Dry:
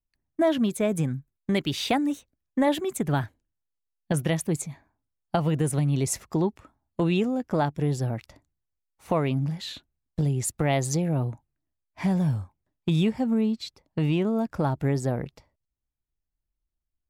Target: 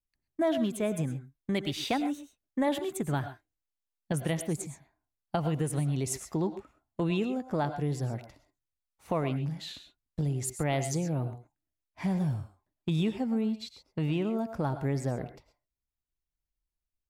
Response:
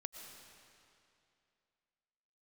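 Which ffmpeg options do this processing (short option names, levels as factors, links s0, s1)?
-filter_complex "[1:a]atrim=start_sample=2205,afade=t=out:st=0.2:d=0.01,atrim=end_sample=9261,asetrate=48510,aresample=44100[s0];[0:a][s0]afir=irnorm=-1:irlink=0"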